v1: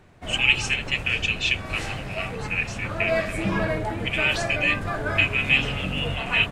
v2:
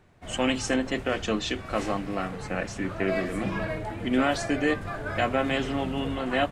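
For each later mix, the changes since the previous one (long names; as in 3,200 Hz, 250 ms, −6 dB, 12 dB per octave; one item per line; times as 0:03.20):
speech: remove high-pass with resonance 2,500 Hz, resonance Q 8
background −6.0 dB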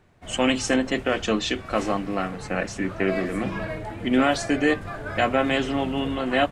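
speech +4.0 dB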